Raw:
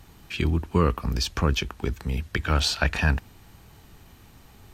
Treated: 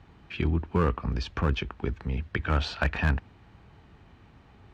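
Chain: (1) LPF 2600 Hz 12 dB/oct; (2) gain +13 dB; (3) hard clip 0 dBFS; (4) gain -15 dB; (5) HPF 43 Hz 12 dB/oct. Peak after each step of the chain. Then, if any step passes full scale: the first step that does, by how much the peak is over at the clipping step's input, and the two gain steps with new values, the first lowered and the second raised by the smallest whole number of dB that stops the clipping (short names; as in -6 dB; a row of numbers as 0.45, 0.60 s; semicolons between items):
-6.5, +6.5, 0.0, -15.0, -13.0 dBFS; step 2, 6.5 dB; step 2 +6 dB, step 4 -8 dB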